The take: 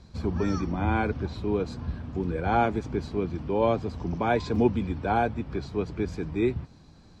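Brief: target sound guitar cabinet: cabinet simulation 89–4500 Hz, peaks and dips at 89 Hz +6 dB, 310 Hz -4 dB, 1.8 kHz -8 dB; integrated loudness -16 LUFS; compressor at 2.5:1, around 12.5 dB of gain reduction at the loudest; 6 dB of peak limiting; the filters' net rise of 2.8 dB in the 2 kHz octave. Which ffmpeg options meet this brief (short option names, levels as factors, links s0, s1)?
-af "equalizer=f=2000:t=o:g=8,acompressor=threshold=0.0178:ratio=2.5,alimiter=level_in=1.33:limit=0.0631:level=0:latency=1,volume=0.75,highpass=89,equalizer=f=89:t=q:w=4:g=6,equalizer=f=310:t=q:w=4:g=-4,equalizer=f=1800:t=q:w=4:g=-8,lowpass=f=4500:w=0.5412,lowpass=f=4500:w=1.3066,volume=13.3"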